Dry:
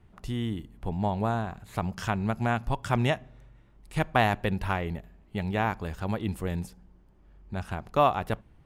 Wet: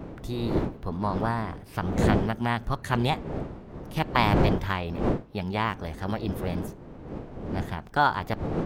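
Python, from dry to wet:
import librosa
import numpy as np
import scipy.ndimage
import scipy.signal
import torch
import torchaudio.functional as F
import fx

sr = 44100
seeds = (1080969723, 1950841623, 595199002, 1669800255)

y = fx.dmg_wind(x, sr, seeds[0], corner_hz=280.0, level_db=-31.0)
y = fx.formant_shift(y, sr, semitones=4)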